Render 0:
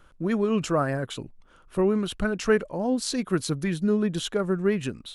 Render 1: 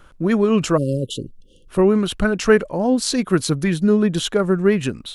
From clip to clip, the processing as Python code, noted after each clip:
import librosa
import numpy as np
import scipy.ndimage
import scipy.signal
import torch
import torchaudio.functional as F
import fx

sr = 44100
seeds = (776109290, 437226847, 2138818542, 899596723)

y = fx.spec_erase(x, sr, start_s=0.77, length_s=0.92, low_hz=580.0, high_hz=2700.0)
y = y * librosa.db_to_amplitude(7.5)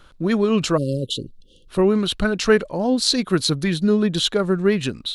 y = fx.peak_eq(x, sr, hz=4000.0, db=10.0, octaves=0.65)
y = y * librosa.db_to_amplitude(-2.0)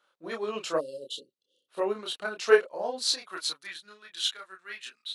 y = fx.filter_sweep_highpass(x, sr, from_hz=570.0, to_hz=1600.0, start_s=2.77, end_s=4.02, q=1.2)
y = fx.chorus_voices(y, sr, voices=4, hz=0.48, base_ms=28, depth_ms=4.5, mix_pct=45)
y = fx.upward_expand(y, sr, threshold_db=-42.0, expansion=1.5)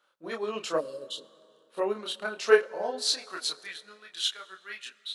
y = fx.rev_plate(x, sr, seeds[0], rt60_s=3.0, hf_ratio=0.55, predelay_ms=0, drr_db=19.0)